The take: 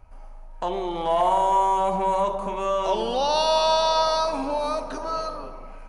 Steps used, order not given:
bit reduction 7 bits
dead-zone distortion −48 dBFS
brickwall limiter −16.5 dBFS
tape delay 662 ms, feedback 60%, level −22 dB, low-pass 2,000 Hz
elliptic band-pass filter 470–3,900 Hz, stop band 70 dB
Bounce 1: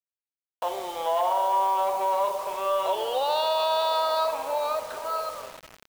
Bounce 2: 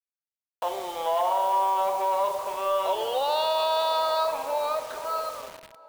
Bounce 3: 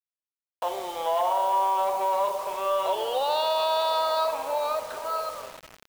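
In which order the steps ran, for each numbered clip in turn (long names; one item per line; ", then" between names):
tape delay, then elliptic band-pass filter, then dead-zone distortion, then brickwall limiter, then bit reduction
elliptic band-pass filter, then brickwall limiter, then dead-zone distortion, then bit reduction, then tape delay
tape delay, then elliptic band-pass filter, then brickwall limiter, then dead-zone distortion, then bit reduction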